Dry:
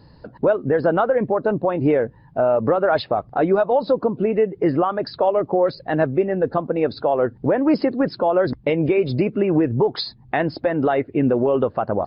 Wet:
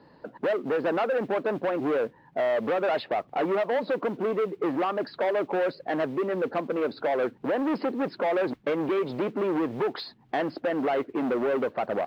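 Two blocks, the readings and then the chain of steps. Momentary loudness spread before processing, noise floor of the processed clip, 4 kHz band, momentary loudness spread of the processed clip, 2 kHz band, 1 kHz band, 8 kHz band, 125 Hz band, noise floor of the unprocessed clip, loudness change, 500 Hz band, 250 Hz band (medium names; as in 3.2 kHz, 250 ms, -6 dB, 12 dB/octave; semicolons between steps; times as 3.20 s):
4 LU, -57 dBFS, -7.0 dB, 4 LU, -3.5 dB, -6.5 dB, no reading, -16.0 dB, -49 dBFS, -7.5 dB, -7.5 dB, -8.5 dB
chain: saturation -22 dBFS, distortion -8 dB; modulation noise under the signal 23 dB; three-band isolator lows -22 dB, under 210 Hz, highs -23 dB, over 3.5 kHz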